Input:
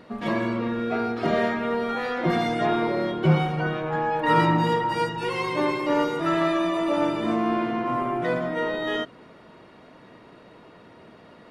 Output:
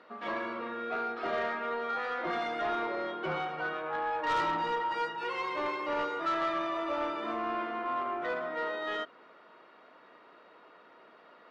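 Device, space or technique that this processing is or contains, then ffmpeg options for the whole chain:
intercom: -af "highpass=430,lowpass=4300,equalizer=frequency=1300:width_type=o:width=0.52:gain=6.5,asoftclip=type=tanh:threshold=-18dB,volume=-6.5dB"

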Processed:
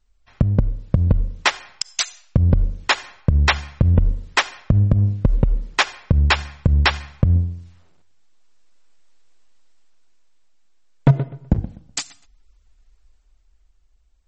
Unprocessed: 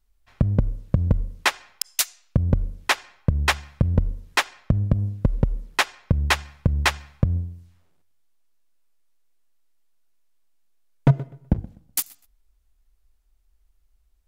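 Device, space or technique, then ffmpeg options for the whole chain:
low-bitrate web radio: -filter_complex "[0:a]asettb=1/sr,asplit=3[link_01][link_02][link_03];[link_01]atrim=end=4.594[link_04];[link_02]atrim=start=4.59:end=5.41,asetpts=PTS-STARTPTS,afade=type=in:duration=0.004:curve=qsin,afade=type=out:start_time=0.816:duration=0.004:curve=qsin,lowpass=frequency=9400:width=0.5412,lowpass=frequency=9400:width=1.3066[link_05];[link_03]atrim=start=5.406[link_06];[link_04][link_05]acrossfade=duration=0.004:curve1=hsin:curve2=qsin[link_07];[link_07][link_06]acrossfade=duration=0.004:curve1=qsin:curve2=hsin,dynaudnorm=framelen=110:gausssize=21:maxgain=10.5dB,alimiter=limit=-7dB:level=0:latency=1:release=61,volume=4dB" -ar 48000 -c:a libmp3lame -b:a 32k

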